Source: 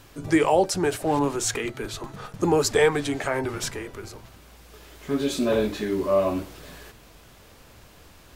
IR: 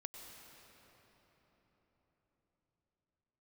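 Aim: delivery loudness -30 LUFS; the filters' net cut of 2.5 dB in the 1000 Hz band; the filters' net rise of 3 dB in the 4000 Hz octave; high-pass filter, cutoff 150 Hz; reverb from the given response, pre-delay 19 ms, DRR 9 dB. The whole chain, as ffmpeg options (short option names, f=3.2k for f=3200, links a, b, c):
-filter_complex "[0:a]highpass=150,equalizer=f=1k:t=o:g=-3.5,equalizer=f=4k:t=o:g=4,asplit=2[a][b];[1:a]atrim=start_sample=2205,adelay=19[c];[b][c]afir=irnorm=-1:irlink=0,volume=-5.5dB[d];[a][d]amix=inputs=2:normalize=0,volume=-5.5dB"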